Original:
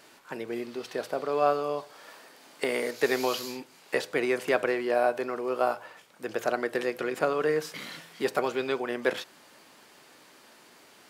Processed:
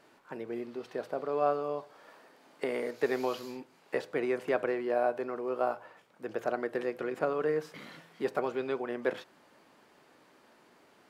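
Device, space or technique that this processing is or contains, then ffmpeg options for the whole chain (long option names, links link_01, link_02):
through cloth: -af "highshelf=frequency=2400:gain=-12.5,volume=-3dB"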